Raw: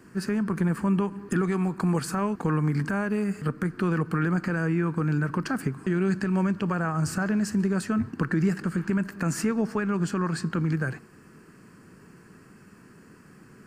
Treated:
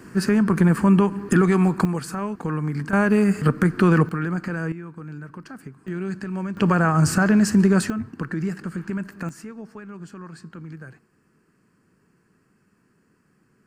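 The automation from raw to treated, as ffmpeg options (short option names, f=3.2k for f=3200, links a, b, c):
-af "asetnsamples=n=441:p=0,asendcmd='1.85 volume volume -1dB;2.93 volume volume 9dB;4.09 volume volume -0.5dB;4.72 volume volume -11dB;5.88 volume volume -4dB;6.57 volume volume 8.5dB;7.9 volume volume -2.5dB;9.29 volume volume -12dB',volume=8dB"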